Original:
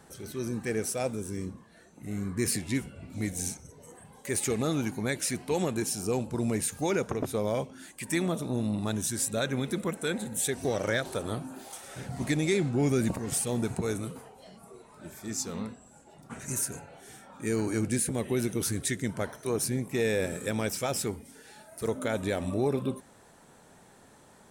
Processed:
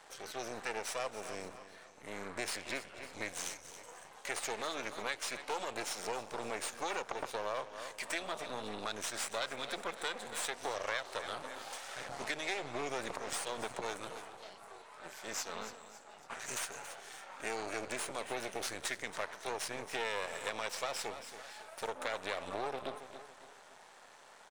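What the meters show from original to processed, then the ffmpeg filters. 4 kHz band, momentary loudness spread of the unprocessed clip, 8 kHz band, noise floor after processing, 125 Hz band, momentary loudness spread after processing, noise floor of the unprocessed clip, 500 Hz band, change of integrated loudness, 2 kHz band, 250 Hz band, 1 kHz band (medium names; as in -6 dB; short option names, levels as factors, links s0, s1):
-2.0 dB, 14 LU, -9.5 dB, -57 dBFS, -24.0 dB, 13 LU, -57 dBFS, -9.5 dB, -9.0 dB, -2.0 dB, -19.0 dB, 0.0 dB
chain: -filter_complex "[0:a]aeval=exprs='max(val(0),0)':c=same,acrossover=split=520 6800:gain=0.0891 1 0.2[s0][s1][s2];[s0][s1][s2]amix=inputs=3:normalize=0,aecho=1:1:277|554|831:0.168|0.0655|0.0255,acompressor=threshold=0.00631:ratio=2.5,volume=2.24"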